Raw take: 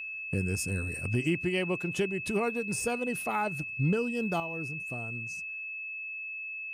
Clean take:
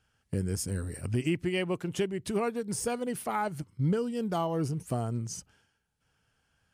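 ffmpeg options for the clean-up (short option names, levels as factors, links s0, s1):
-af "bandreject=f=2600:w=30,asetnsamples=n=441:p=0,asendcmd='4.4 volume volume 9dB',volume=1"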